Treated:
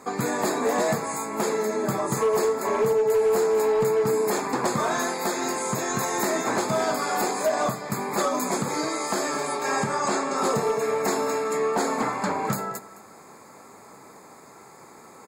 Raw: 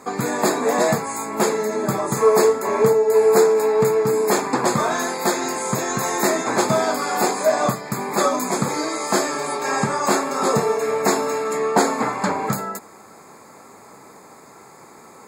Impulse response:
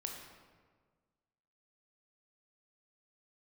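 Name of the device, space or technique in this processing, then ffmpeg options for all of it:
limiter into clipper: -filter_complex "[0:a]asettb=1/sr,asplit=3[link_01][link_02][link_03];[link_01]atrim=end=9.954[link_04];[link_02]atrim=start=9.95:end=10.38,asetpts=PTS-STARTPTS,afade=type=in:duration=0.004:curve=qsin,afade=type=out:start_time=0.426:duration=0.004:curve=qsin,lowpass=frequency=8800:width=0.5412,lowpass=frequency=8800:width=1.3066[link_05];[link_03]atrim=start=10.376[link_06];[link_04][link_05]acrossfade=duration=0.004:curve1=hsin:curve2=qsin[link_07];[link_07][link_06]acrossfade=duration=0.004:curve1=qsin:curve2=hsin,aecho=1:1:212:0.133,alimiter=limit=-10.5dB:level=0:latency=1:release=122,asoftclip=type=hard:threshold=-13.5dB,volume=-3dB"

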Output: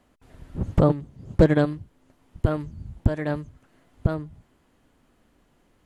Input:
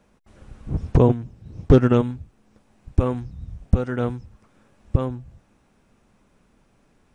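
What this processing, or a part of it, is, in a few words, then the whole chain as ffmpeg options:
nightcore: -af "asetrate=53802,aresample=44100,volume=-2.5dB"

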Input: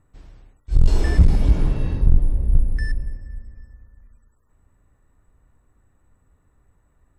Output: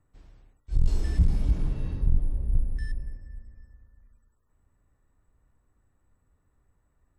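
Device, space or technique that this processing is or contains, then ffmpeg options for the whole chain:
one-band saturation: -filter_complex "[0:a]acrossover=split=280|4400[link_01][link_02][link_03];[link_02]asoftclip=type=tanh:threshold=-37dB[link_04];[link_01][link_04][link_03]amix=inputs=3:normalize=0,volume=-8dB"

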